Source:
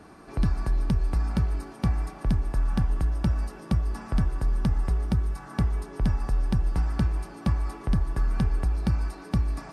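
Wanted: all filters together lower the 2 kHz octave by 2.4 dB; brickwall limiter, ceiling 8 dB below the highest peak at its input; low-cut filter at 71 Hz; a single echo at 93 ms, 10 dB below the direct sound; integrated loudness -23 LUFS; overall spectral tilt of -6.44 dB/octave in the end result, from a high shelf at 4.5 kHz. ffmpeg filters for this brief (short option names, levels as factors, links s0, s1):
-af "highpass=71,equalizer=f=2000:t=o:g=-4.5,highshelf=f=4500:g=7.5,alimiter=limit=0.0841:level=0:latency=1,aecho=1:1:93:0.316,volume=3.35"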